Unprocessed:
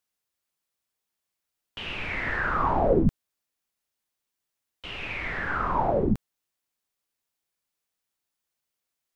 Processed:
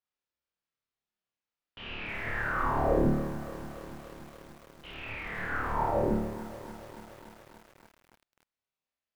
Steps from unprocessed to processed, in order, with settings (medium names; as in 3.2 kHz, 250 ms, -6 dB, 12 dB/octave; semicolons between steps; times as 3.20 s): distance through air 160 m; flutter echo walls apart 4.7 m, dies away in 0.84 s; bit-crushed delay 287 ms, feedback 80%, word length 6-bit, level -14 dB; trim -8 dB